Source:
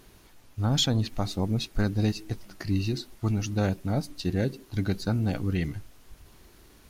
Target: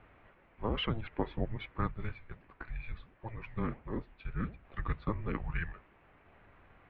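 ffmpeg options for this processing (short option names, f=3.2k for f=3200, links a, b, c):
-filter_complex "[0:a]asettb=1/sr,asplit=3[a][b][c];[a]atrim=end=1.914[d];[b]atrim=start=1.91:end=4.65,asetpts=PTS-STARTPTS,afade=t=in:d=0.004:c=qsin,afade=t=out:st=2.736:d=0.004:c=qsin,flanger=delay=3.9:depth=9.5:regen=-87:speed=1.5:shape=sinusoidal[e];[c]atrim=start=4.646[f];[d][e]acrossfade=d=0.004:c1=hsin:c2=qsin[g];[g][f]acrossfade=d=0.004:c1=qsin:c2=hsin,highpass=f=310:t=q:w=0.5412,highpass=f=310:t=q:w=1.307,lowpass=f=2.7k:t=q:w=0.5176,lowpass=f=2.7k:t=q:w=0.7071,lowpass=f=2.7k:t=q:w=1.932,afreqshift=-330,volume=1dB"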